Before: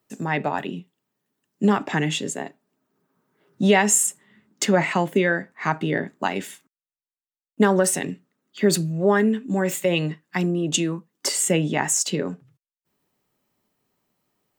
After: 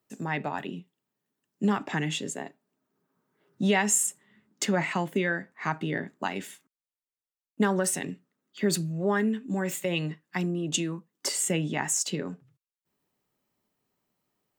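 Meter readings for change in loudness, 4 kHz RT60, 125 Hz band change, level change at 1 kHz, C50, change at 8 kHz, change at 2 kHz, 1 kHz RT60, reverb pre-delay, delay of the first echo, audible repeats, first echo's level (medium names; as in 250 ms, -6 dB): -6.5 dB, no reverb, -6.0 dB, -7.0 dB, no reverb, -5.5 dB, -5.5 dB, no reverb, no reverb, no echo, no echo, no echo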